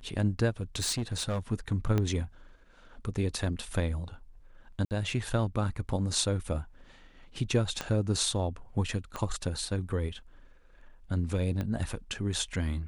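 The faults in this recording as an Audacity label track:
0.500000	1.400000	clipped -27 dBFS
1.980000	1.980000	pop -16 dBFS
4.850000	4.910000	gap 58 ms
7.810000	7.810000	pop -17 dBFS
9.160000	9.160000	pop -20 dBFS
11.610000	11.610000	pop -21 dBFS

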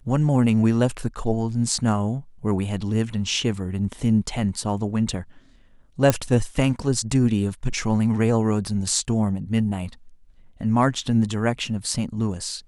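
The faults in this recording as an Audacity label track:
6.100000	6.100000	pop -4 dBFS

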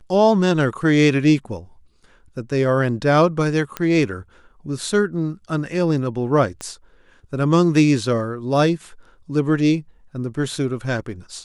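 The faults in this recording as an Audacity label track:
3.770000	3.770000	pop -10 dBFS
6.610000	6.610000	pop -16 dBFS

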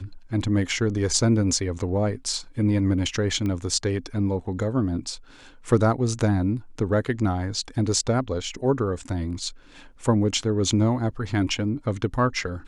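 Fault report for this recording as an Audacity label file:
3.460000	3.460000	pop -18 dBFS

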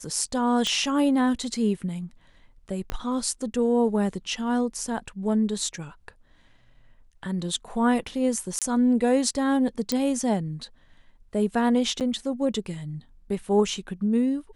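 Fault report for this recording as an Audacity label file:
0.670000	0.670000	pop -13 dBFS
2.900000	2.900000	pop -14 dBFS
8.590000	8.620000	gap 27 ms
9.920000	9.920000	pop -11 dBFS
12.000000	12.010000	gap 8.1 ms

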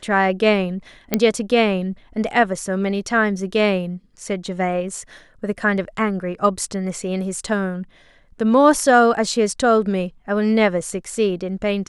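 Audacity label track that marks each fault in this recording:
1.140000	1.140000	pop -3 dBFS

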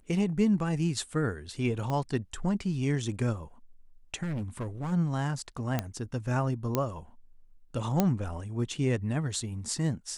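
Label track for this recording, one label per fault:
1.900000	1.900000	pop -20 dBFS
4.230000	4.930000	clipped -30 dBFS
5.790000	5.790000	pop -14 dBFS
6.750000	6.750000	pop -12 dBFS
8.000000	8.000000	pop -10 dBFS

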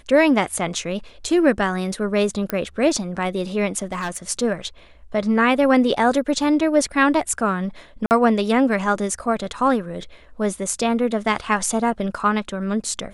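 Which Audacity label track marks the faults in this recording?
2.500000	2.500000	pop -8 dBFS
3.820000	4.170000	clipped -21 dBFS
8.060000	8.110000	gap 49 ms

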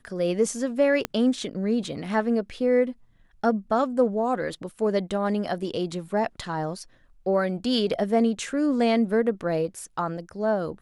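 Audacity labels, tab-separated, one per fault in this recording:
1.050000	1.050000	pop -11 dBFS

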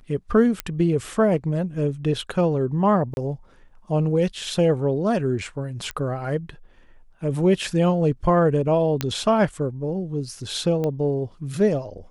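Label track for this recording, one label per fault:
0.600000	0.600000	pop -9 dBFS
3.140000	3.170000	gap 31 ms
5.910000	5.910000	pop -16 dBFS
9.010000	9.010000	pop -8 dBFS
10.840000	10.840000	pop -15 dBFS

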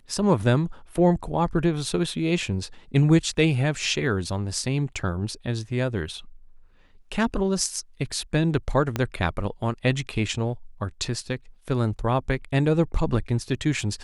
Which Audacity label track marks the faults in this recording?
8.960000	8.960000	pop -11 dBFS

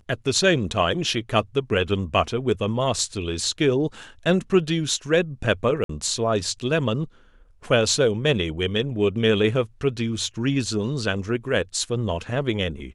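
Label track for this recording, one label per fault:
5.840000	5.890000	gap 53 ms

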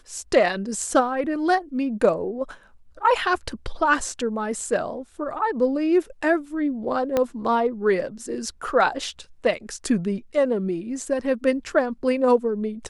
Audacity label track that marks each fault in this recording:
7.170000	7.170000	pop -9 dBFS

